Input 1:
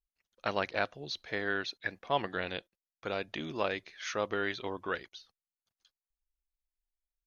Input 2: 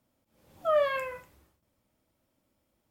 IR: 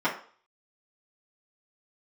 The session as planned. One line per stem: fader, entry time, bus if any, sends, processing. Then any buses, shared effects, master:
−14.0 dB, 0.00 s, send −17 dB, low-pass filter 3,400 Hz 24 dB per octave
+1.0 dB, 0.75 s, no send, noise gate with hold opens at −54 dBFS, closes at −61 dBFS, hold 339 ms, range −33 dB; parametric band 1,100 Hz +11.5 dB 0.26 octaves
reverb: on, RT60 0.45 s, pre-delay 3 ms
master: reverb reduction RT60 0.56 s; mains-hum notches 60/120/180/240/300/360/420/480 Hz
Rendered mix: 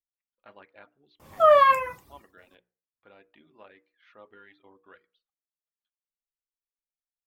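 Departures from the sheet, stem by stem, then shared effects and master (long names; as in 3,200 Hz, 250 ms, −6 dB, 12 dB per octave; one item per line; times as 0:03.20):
stem 1 −14.0 dB → −21.0 dB
stem 2 +1.0 dB → +7.5 dB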